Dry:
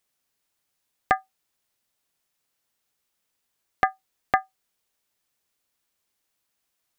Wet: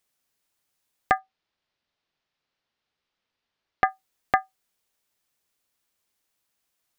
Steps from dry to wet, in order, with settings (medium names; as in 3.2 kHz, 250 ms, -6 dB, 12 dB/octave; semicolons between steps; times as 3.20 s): 1.18–3.89 s: low-pass 4.7 kHz 24 dB/octave